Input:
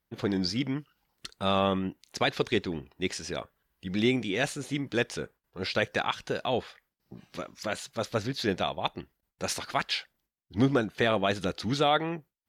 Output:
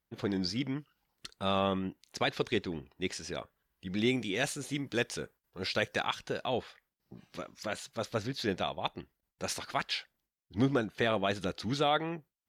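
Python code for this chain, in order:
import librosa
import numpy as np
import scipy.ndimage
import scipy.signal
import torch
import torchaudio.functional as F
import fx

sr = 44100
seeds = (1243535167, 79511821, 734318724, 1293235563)

y = fx.high_shelf(x, sr, hz=4900.0, db=6.5, at=(4.07, 6.19))
y = y * 10.0 ** (-4.0 / 20.0)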